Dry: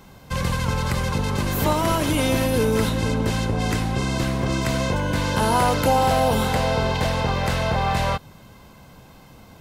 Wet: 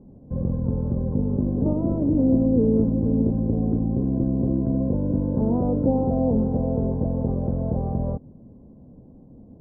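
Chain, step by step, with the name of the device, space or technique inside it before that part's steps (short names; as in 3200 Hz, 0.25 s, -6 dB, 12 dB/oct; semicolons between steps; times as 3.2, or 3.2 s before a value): under water (LPF 550 Hz 24 dB/oct; bell 250 Hz +9 dB 0.53 oct); gain -1.5 dB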